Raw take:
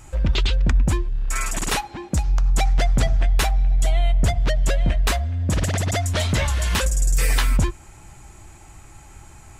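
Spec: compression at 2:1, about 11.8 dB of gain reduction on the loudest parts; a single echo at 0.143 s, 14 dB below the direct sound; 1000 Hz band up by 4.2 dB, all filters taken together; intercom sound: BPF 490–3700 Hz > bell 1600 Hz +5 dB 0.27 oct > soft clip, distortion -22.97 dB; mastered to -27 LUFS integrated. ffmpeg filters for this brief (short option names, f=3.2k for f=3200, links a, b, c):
-af "equalizer=f=1k:t=o:g=6,acompressor=threshold=-37dB:ratio=2,highpass=490,lowpass=3.7k,equalizer=f=1.6k:t=o:w=0.27:g=5,aecho=1:1:143:0.2,asoftclip=threshold=-23.5dB,volume=12.5dB"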